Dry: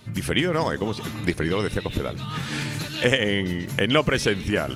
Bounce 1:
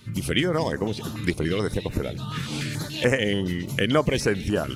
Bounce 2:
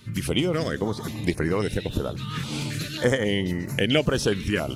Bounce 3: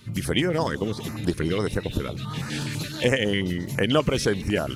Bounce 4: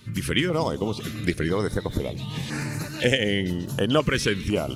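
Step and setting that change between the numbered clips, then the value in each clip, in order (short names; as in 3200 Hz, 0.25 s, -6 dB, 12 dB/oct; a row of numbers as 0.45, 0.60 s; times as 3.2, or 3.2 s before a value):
stepped notch, rate: 6.9, 3.7, 12, 2 Hz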